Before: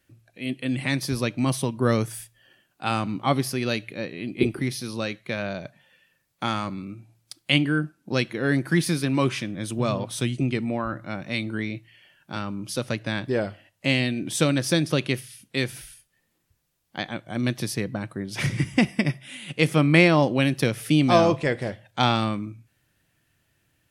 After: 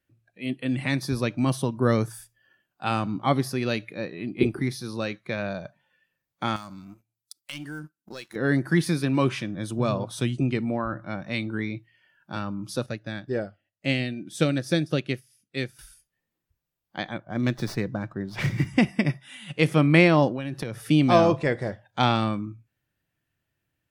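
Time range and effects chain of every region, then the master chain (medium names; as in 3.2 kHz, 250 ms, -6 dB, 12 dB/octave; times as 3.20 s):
6.56–8.36 s: waveshaping leveller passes 2 + pre-emphasis filter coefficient 0.8 + compression 2.5:1, threshold -35 dBFS
12.86–15.79 s: peaking EQ 1 kHz -11 dB 0.33 oct + upward expansion, over -38 dBFS
17.18–18.67 s: level-controlled noise filter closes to 1.6 kHz, open at -23.5 dBFS + sliding maximum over 3 samples
20.28–20.80 s: treble shelf 4.8 kHz -4 dB + compression 12:1, threshold -25 dBFS
whole clip: spectral noise reduction 10 dB; treble shelf 3.8 kHz -6.5 dB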